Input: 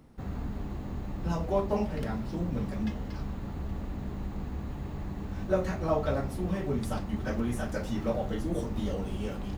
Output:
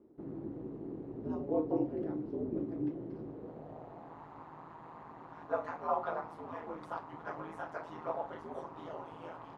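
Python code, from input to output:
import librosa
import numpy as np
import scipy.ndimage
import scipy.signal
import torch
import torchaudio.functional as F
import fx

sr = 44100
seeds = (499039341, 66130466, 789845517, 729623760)

y = x * np.sin(2.0 * np.pi * 81.0 * np.arange(len(x)) / sr)
y = fx.filter_sweep_bandpass(y, sr, from_hz=360.0, to_hz=1000.0, start_s=3.15, end_s=4.25, q=2.7)
y = y * librosa.db_to_amplitude(6.0)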